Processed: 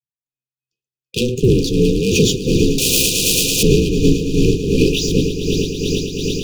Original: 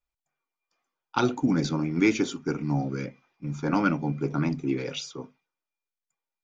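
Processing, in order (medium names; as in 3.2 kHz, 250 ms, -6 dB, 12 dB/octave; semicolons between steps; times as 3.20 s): waveshaping leveller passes 5; 4.22–4.81 s: level held to a coarse grid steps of 18 dB; ring modulator 130 Hz; level rider gain up to 13 dB; on a send: echo with a slow build-up 111 ms, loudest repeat 8, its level -13 dB; on the sum: tremolo 2.7 Hz, depth 57%; brick-wall FIR band-stop 520–2400 Hz; 2.78–3.63 s: spectrum-flattening compressor 4:1; trim -3 dB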